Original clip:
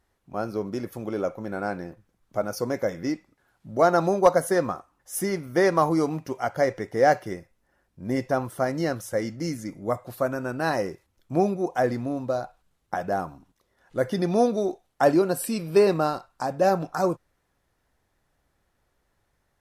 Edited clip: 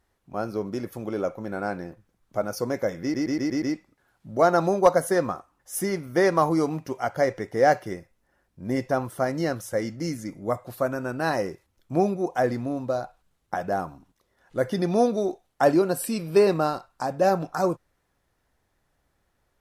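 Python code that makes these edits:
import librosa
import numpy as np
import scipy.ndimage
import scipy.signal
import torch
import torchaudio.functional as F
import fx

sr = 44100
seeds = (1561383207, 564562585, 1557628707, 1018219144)

y = fx.edit(x, sr, fx.stutter(start_s=3.02, slice_s=0.12, count=6), tone=tone)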